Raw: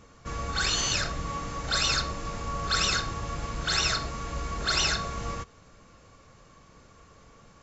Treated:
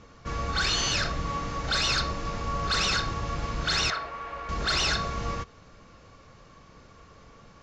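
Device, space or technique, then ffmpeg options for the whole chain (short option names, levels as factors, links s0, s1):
synthesiser wavefolder: -filter_complex "[0:a]aeval=exprs='0.0841*(abs(mod(val(0)/0.0841+3,4)-2)-1)':c=same,lowpass=f=6000:w=0.5412,lowpass=f=6000:w=1.3066,asettb=1/sr,asplit=3[s0][s1][s2];[s0]atrim=end=3.904[s3];[s1]atrim=start=3.9:end=4.49,asetpts=PTS-STARTPTS,afade=t=in:d=0.004:c=qsin,afade=t=out:st=0.586:d=0.004:c=qsin,acrossover=split=450 2800:gain=0.141 1 0.141[s4][s5][s6];[s4][s5][s6]amix=inputs=3:normalize=0[s7];[s2]atrim=start=4.486[s8];[s3][s7]acrossfade=d=0.004:c1=hsin:c2=qsin[s9];[s9][s8]acrossfade=d=0.004:c1=qsin:c2=hsin,volume=1.33"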